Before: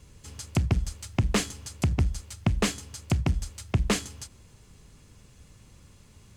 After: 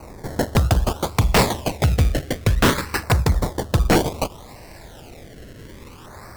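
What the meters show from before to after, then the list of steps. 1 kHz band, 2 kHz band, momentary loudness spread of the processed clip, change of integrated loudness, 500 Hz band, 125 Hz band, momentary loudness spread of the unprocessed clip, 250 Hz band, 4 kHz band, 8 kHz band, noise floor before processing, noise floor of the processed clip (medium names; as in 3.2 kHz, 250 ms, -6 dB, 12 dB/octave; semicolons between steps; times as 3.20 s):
+14.5 dB, +11.0 dB, 8 LU, +8.0 dB, +13.5 dB, +7.5 dB, 14 LU, +7.5 dB, +8.5 dB, +5.0 dB, -56 dBFS, -42 dBFS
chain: resonant low shelf 500 Hz -12 dB, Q 1.5; decimation with a swept rate 25×, swing 100% 0.59 Hz; LFO notch saw down 0.33 Hz 610–3300 Hz; sine folder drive 17 dB, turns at -10 dBFS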